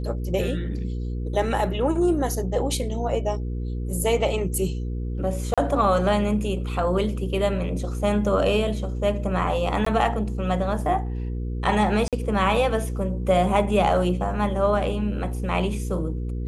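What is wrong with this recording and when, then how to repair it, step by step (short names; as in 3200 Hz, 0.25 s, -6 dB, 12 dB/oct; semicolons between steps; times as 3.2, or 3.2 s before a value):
hum 60 Hz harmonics 8 -28 dBFS
5.54–5.58 gap 36 ms
9.85–9.86 gap 14 ms
12.08–12.13 gap 47 ms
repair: de-hum 60 Hz, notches 8; interpolate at 5.54, 36 ms; interpolate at 9.85, 14 ms; interpolate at 12.08, 47 ms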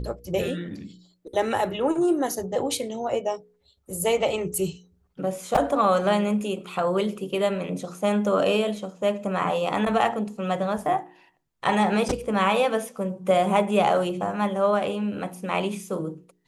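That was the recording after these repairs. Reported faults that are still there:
none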